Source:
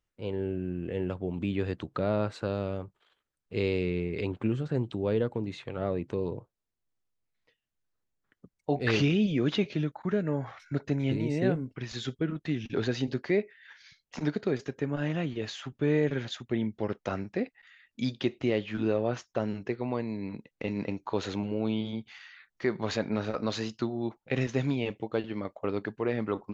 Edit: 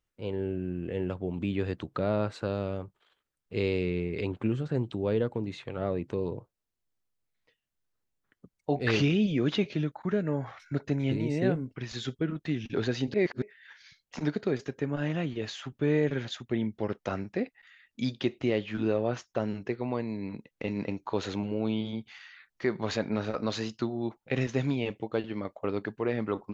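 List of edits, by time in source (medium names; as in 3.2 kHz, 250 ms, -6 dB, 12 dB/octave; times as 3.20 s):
13.14–13.42 s: reverse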